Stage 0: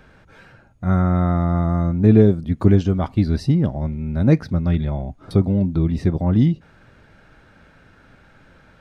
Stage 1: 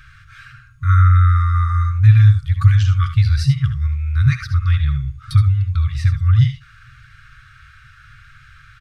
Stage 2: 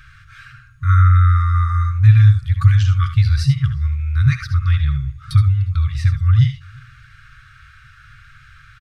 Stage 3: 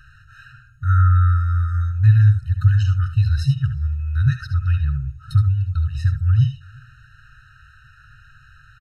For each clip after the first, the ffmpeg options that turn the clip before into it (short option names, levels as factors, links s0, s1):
-af "aecho=1:1:67|77:0.237|0.266,afftfilt=real='re*(1-between(b*sr/4096,150,1100))':imag='im*(1-between(b*sr/4096,150,1100))':win_size=4096:overlap=0.75,volume=2.24"
-filter_complex "[0:a]asplit=2[s0][s1];[s1]adelay=355.7,volume=0.0447,highshelf=f=4000:g=-8[s2];[s0][s2]amix=inputs=2:normalize=0"
-af "afftfilt=real='re*eq(mod(floor(b*sr/1024/620),2),0)':imag='im*eq(mod(floor(b*sr/1024/620),2),0)':win_size=1024:overlap=0.75,volume=0.708"